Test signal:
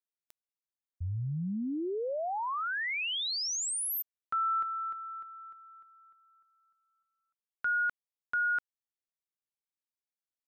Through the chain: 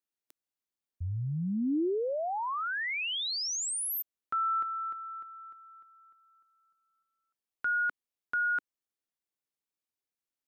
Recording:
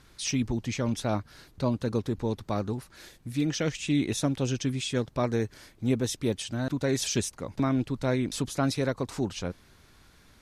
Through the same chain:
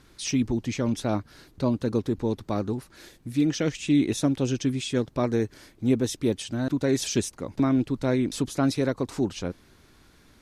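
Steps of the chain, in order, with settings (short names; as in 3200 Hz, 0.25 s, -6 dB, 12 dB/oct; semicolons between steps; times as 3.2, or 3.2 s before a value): bell 310 Hz +5.5 dB 1.1 oct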